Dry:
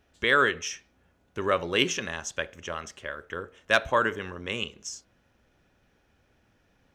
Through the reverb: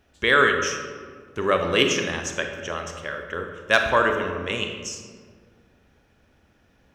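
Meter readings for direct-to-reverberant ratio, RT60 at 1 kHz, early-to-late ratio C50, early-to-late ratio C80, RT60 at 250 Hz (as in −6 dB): 4.5 dB, 1.6 s, 5.5 dB, 7.0 dB, 2.2 s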